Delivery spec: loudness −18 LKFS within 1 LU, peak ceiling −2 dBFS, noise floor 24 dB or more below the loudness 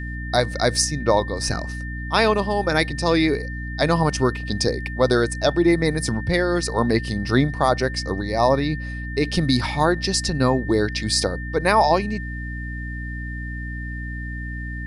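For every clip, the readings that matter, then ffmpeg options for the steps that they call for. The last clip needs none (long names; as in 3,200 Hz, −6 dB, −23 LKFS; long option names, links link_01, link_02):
mains hum 60 Hz; hum harmonics up to 300 Hz; level of the hum −28 dBFS; interfering tone 1,800 Hz; level of the tone −34 dBFS; integrated loudness −22.0 LKFS; sample peak −5.0 dBFS; target loudness −18.0 LKFS
→ -af "bandreject=frequency=60:width_type=h:width=4,bandreject=frequency=120:width_type=h:width=4,bandreject=frequency=180:width_type=h:width=4,bandreject=frequency=240:width_type=h:width=4,bandreject=frequency=300:width_type=h:width=4"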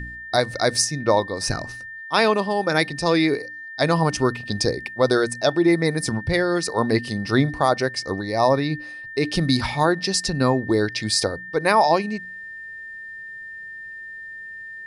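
mains hum none found; interfering tone 1,800 Hz; level of the tone −34 dBFS
→ -af "bandreject=frequency=1800:width=30"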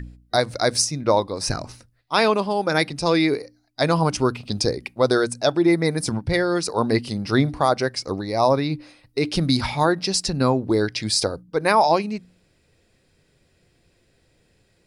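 interfering tone none found; integrated loudness −21.5 LKFS; sample peak −6.0 dBFS; target loudness −18.0 LKFS
→ -af "volume=3.5dB"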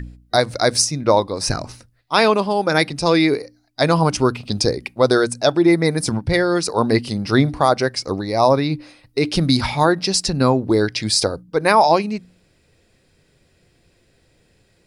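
integrated loudness −18.0 LKFS; sample peak −2.5 dBFS; background noise floor −60 dBFS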